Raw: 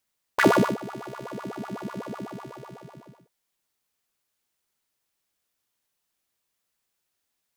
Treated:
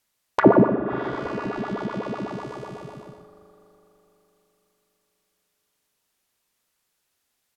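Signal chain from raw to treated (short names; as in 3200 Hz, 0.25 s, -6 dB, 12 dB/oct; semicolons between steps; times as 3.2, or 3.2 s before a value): on a send: frequency-shifting echo 0.327 s, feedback 41%, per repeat -60 Hz, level -22.5 dB; on the sum: spring tank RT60 3.9 s, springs 40 ms, chirp 25 ms, DRR 9.5 dB; treble ducked by the level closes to 840 Hz, closed at -23.5 dBFS; gain +5.5 dB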